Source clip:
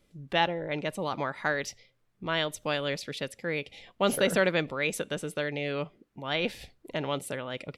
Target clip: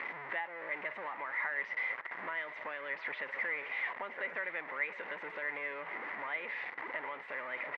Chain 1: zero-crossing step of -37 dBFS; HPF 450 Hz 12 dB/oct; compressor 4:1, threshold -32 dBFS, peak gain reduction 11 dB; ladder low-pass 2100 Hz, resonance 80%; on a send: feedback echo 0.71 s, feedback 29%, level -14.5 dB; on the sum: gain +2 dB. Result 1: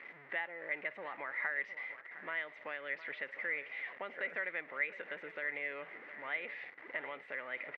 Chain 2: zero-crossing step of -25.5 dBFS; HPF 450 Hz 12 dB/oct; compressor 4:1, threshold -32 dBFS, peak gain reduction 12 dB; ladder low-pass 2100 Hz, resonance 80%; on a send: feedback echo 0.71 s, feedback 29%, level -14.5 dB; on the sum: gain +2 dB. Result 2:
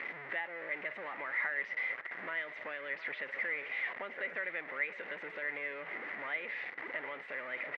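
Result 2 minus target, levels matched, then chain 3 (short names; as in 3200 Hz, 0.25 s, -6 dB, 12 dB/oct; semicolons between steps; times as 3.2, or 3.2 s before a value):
1000 Hz band -4.0 dB
zero-crossing step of -25.5 dBFS; HPF 450 Hz 12 dB/oct; bell 970 Hz +9.5 dB 0.61 oct; compressor 4:1, threshold -32 dBFS, peak gain reduction 15.5 dB; ladder low-pass 2100 Hz, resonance 80%; on a send: feedback echo 0.71 s, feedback 29%, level -14.5 dB; on the sum: gain +2 dB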